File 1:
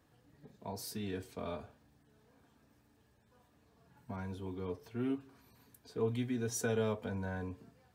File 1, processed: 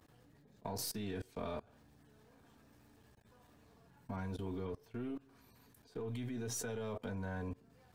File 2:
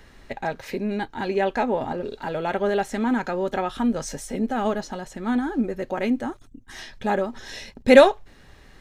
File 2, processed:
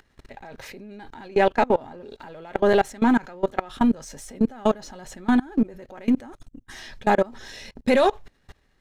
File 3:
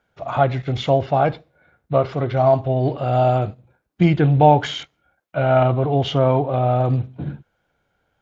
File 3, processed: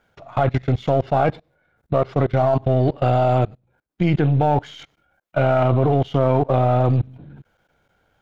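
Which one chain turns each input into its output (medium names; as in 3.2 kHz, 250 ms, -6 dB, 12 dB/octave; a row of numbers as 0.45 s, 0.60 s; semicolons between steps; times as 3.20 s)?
partial rectifier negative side -3 dB; level held to a coarse grid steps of 24 dB; trim +7.5 dB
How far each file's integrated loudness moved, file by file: -3.5 LU, +0.5 LU, -1.0 LU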